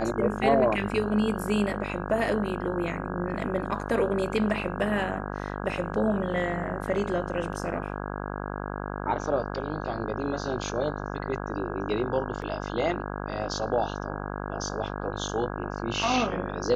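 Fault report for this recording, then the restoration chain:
mains buzz 50 Hz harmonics 33 −34 dBFS
0:12.42: drop-out 2.1 ms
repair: hum removal 50 Hz, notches 33
repair the gap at 0:12.42, 2.1 ms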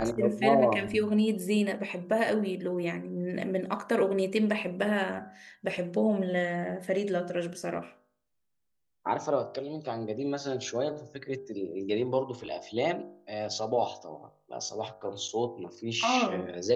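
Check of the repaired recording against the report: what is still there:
none of them is left

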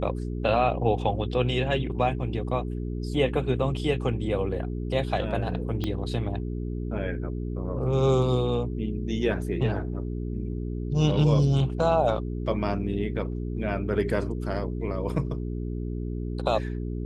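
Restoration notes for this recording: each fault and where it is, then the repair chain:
mains hum 60 Hz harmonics 7 −31 dBFS
0:05.84: click −16 dBFS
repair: click removal
hum removal 60 Hz, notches 7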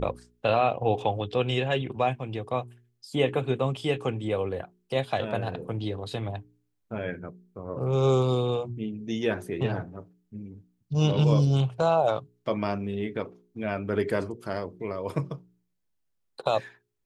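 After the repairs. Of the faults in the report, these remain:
0:05.84: click

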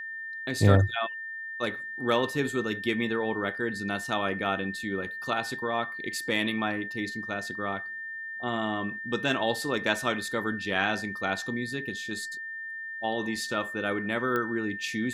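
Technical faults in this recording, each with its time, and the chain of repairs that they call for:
whistle 1,800 Hz −35 dBFS
0:14.36: click −17 dBFS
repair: click removal
notch filter 1,800 Hz, Q 30

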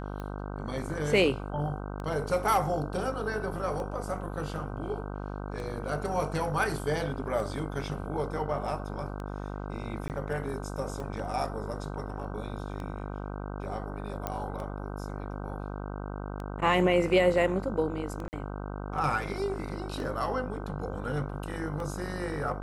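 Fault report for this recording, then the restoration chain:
mains buzz 50 Hz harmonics 31 −37 dBFS
scratch tick 33 1/3 rpm −26 dBFS
0:10.08–0:10.10: drop-out 18 ms
0:14.27: click −17 dBFS
0:18.28–0:18.33: drop-out 49 ms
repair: click removal
hum removal 50 Hz, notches 31
repair the gap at 0:10.08, 18 ms
repair the gap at 0:18.28, 49 ms

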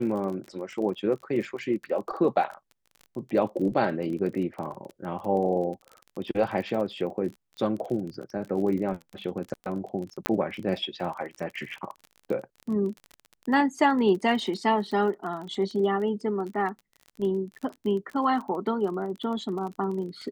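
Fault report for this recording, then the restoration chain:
surface crackle 30 per second −34 dBFS
0:10.26: click −8 dBFS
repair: click removal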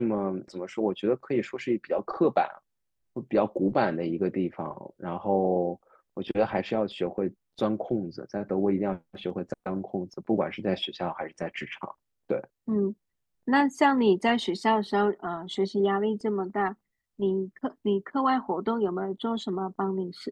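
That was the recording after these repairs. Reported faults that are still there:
0:10.26: click

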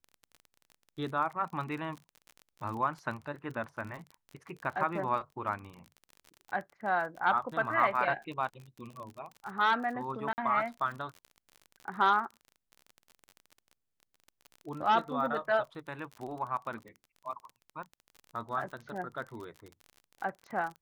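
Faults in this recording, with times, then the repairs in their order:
surface crackle 35 per second −39 dBFS
0:10.33–0:10.38: drop-out 49 ms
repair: click removal
repair the gap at 0:10.33, 49 ms

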